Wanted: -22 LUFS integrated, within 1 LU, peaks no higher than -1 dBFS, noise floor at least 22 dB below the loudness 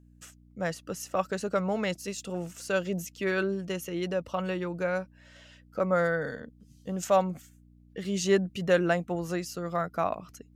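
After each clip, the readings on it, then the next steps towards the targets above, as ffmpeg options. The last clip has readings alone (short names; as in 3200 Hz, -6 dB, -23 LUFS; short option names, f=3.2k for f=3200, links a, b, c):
hum 60 Hz; harmonics up to 300 Hz; hum level -55 dBFS; loudness -30.0 LUFS; peak -10.5 dBFS; loudness target -22.0 LUFS
-> -af "bandreject=f=60:t=h:w=4,bandreject=f=120:t=h:w=4,bandreject=f=180:t=h:w=4,bandreject=f=240:t=h:w=4,bandreject=f=300:t=h:w=4"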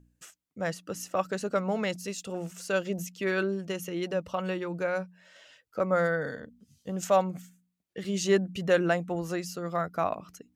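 hum none; loudness -30.5 LUFS; peak -11.0 dBFS; loudness target -22.0 LUFS
-> -af "volume=8.5dB"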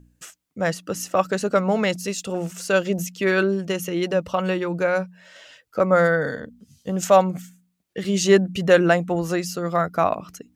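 loudness -22.0 LUFS; peak -2.5 dBFS; noise floor -69 dBFS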